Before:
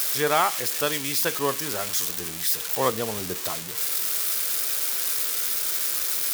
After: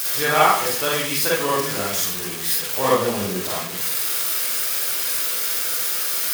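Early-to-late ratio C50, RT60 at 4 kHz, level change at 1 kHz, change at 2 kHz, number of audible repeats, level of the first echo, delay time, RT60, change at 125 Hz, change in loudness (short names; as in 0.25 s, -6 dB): -0.5 dB, 0.30 s, +6.5 dB, +6.5 dB, none, none, none, 0.55 s, +5.5 dB, +3.5 dB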